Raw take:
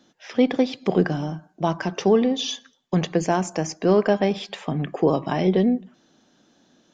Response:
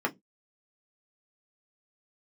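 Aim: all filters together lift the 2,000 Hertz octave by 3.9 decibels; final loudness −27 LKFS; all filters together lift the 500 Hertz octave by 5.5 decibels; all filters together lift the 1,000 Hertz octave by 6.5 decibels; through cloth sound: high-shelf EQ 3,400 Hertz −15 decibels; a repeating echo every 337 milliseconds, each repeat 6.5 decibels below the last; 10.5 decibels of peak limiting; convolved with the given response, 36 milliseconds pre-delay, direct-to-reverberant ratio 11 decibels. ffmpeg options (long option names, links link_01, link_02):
-filter_complex "[0:a]equalizer=frequency=500:width_type=o:gain=5.5,equalizer=frequency=1000:width_type=o:gain=6.5,equalizer=frequency=2000:width_type=o:gain=6.5,alimiter=limit=-12.5dB:level=0:latency=1,aecho=1:1:337|674|1011|1348|1685|2022:0.473|0.222|0.105|0.0491|0.0231|0.0109,asplit=2[link_01][link_02];[1:a]atrim=start_sample=2205,adelay=36[link_03];[link_02][link_03]afir=irnorm=-1:irlink=0,volume=-20dB[link_04];[link_01][link_04]amix=inputs=2:normalize=0,highshelf=frequency=3400:gain=-15,volume=-3.5dB"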